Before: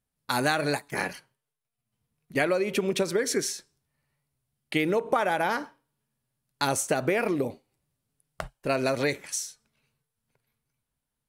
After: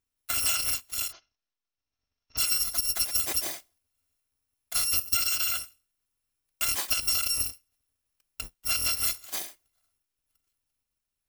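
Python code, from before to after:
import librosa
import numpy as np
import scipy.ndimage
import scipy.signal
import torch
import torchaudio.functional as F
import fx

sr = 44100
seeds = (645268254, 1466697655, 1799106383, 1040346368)

y = fx.bit_reversed(x, sr, seeds[0], block=256)
y = fx.cheby1_lowpass(y, sr, hz=6400.0, order=8, at=(1.11, 2.37), fade=0.02)
y = y * librosa.db_to_amplitude(-1.5)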